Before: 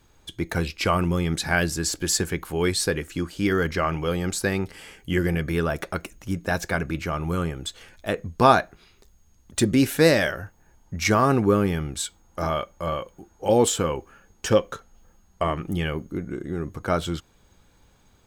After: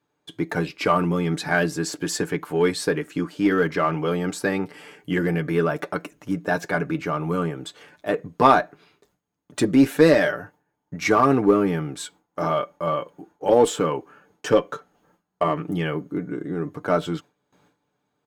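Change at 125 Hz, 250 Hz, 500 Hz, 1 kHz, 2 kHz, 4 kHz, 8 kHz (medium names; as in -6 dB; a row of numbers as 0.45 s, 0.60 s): -2.0 dB, +2.5 dB, +2.5 dB, +2.5 dB, +0.5 dB, -3.5 dB, -6.0 dB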